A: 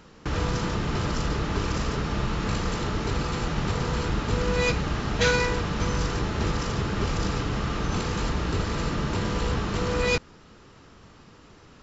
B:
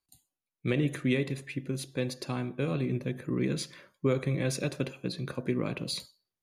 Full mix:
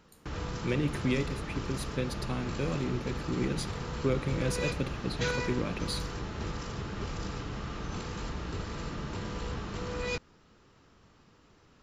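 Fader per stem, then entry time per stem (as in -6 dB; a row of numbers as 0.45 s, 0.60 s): -10.0 dB, -2.0 dB; 0.00 s, 0.00 s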